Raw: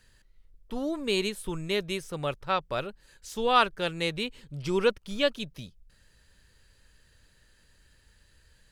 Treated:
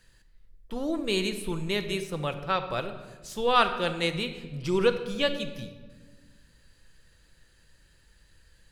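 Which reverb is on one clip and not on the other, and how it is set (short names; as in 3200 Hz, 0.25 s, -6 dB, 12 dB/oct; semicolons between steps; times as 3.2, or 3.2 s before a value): shoebox room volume 1200 m³, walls mixed, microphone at 0.76 m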